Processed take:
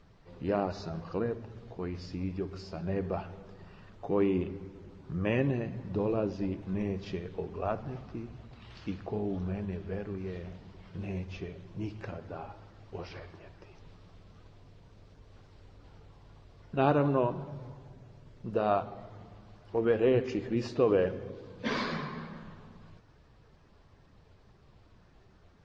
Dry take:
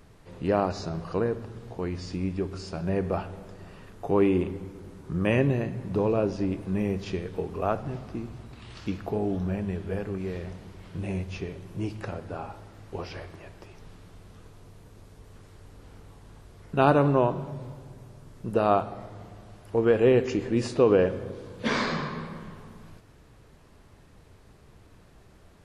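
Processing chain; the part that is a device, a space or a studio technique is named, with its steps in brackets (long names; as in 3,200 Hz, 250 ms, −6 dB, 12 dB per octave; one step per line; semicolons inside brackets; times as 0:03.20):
clip after many re-uploads (low-pass filter 5,900 Hz 24 dB per octave; spectral magnitudes quantised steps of 15 dB)
level −5 dB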